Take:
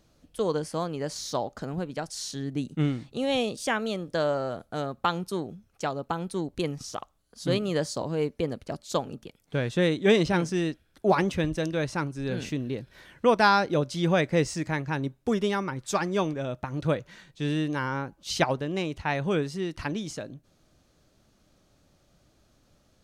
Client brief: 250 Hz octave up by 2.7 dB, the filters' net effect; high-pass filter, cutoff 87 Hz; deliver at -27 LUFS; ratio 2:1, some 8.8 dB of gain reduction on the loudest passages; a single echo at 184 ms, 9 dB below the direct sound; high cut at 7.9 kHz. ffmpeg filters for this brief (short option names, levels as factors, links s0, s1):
-af "highpass=87,lowpass=7900,equalizer=f=250:t=o:g=4,acompressor=threshold=0.0282:ratio=2,aecho=1:1:184:0.355,volume=1.88"